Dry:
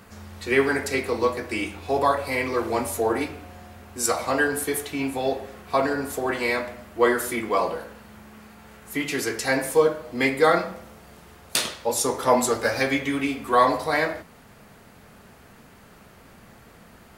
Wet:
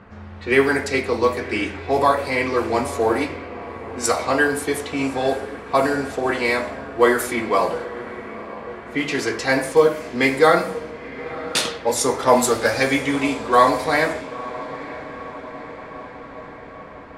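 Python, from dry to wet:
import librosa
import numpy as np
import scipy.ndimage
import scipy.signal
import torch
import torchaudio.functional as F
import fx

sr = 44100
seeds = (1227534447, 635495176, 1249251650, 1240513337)

y = fx.echo_diffused(x, sr, ms=960, feedback_pct=67, wet_db=-15.0)
y = fx.env_lowpass(y, sr, base_hz=1900.0, full_db=-18.0)
y = y * 10.0 ** (4.0 / 20.0)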